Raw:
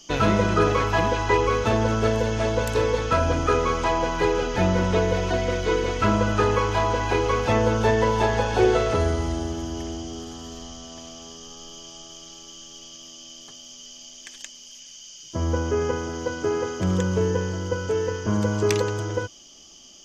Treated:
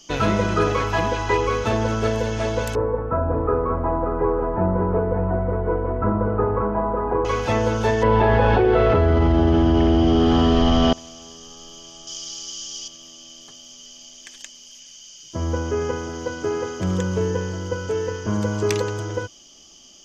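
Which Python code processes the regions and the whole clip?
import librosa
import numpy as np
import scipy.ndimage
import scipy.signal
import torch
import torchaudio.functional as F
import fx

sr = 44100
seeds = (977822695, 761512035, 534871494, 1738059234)

y = fx.chain(x, sr, fx.cheby2_lowpass(hz=6800.0, order=4, stop_db=80),
    fx.echo_single(ms=583, db=-6.0), at=(2.75, 7.25))
y = fx.chain(y, sr, fx.air_absorb(metres=390.0),
    fx.env_flatten(amount_pct=100), at=(8.03, 10.93))
y = fx.chain(y, sr, fx.peak_eq(hz=5400.0, db=12.5, octaves=1.8),
    fx.notch(hz=6300.0, q=27.0), at=(12.07, 12.88))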